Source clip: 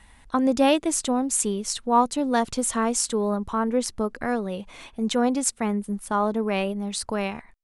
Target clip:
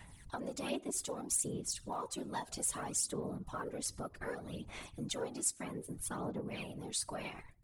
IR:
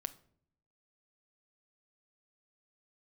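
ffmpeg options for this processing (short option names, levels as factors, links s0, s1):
-filter_complex "[0:a]asplit=2[s0][s1];[1:a]atrim=start_sample=2205,afade=t=out:st=0.14:d=0.01,atrim=end_sample=6615,asetrate=26460,aresample=44100[s2];[s1][s2]afir=irnorm=-1:irlink=0,volume=0.335[s3];[s0][s3]amix=inputs=2:normalize=0,aphaser=in_gain=1:out_gain=1:delay=3.2:decay=0.65:speed=0.63:type=sinusoidal,acompressor=threshold=0.0355:ratio=3,afftfilt=real='hypot(re,im)*cos(2*PI*random(0))':imag='hypot(re,im)*sin(2*PI*random(1))':win_size=512:overlap=0.75,aemphasis=mode=production:type=cd,volume=0.501"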